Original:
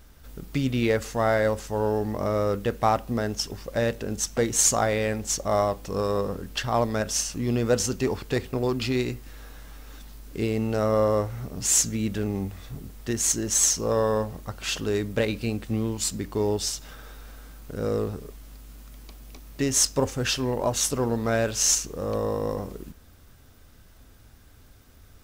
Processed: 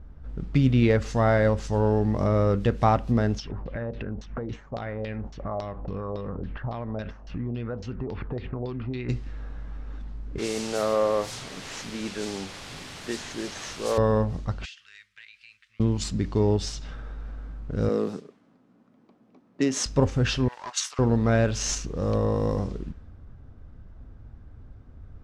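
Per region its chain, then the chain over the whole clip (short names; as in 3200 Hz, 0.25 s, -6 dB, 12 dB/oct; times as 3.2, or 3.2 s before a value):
3.38–9.09 compressor, threshold -33 dBFS + LFO low-pass saw down 3.6 Hz 590–4400 Hz
10.38–13.98 BPF 410–2400 Hz + requantised 6-bit, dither triangular
14.65–15.8 inverse Chebyshev high-pass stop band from 770 Hz, stop band 50 dB + compressor 20:1, threshold -35 dBFS
17.89–19.86 gate -39 dBFS, range -6 dB + HPF 190 Hz 24 dB/oct
20.48–20.99 HPF 1100 Hz 24 dB/oct + Doppler distortion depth 0.14 ms
whole clip: low-pass opened by the level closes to 1000 Hz, open at -24 dBFS; tone controls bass +8 dB, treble +8 dB; treble ducked by the level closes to 2800 Hz, closed at -18.5 dBFS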